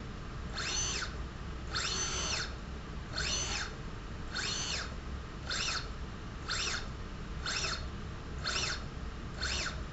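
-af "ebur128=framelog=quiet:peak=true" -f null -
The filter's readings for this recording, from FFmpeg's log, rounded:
Integrated loudness:
  I:         -36.3 LUFS
  Threshold: -46.3 LUFS
Loudness range:
  LRA:         1.7 LU
  Threshold: -56.4 LUFS
  LRA low:   -37.0 LUFS
  LRA high:  -35.3 LUFS
True peak:
  Peak:      -20.4 dBFS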